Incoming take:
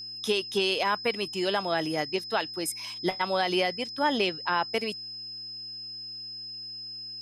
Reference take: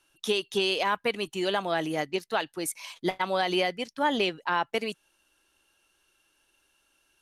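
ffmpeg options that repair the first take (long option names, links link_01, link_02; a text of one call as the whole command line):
ffmpeg -i in.wav -af "bandreject=frequency=113.3:width_type=h:width=4,bandreject=frequency=226.6:width_type=h:width=4,bandreject=frequency=339.9:width_type=h:width=4,bandreject=frequency=5100:width=30" out.wav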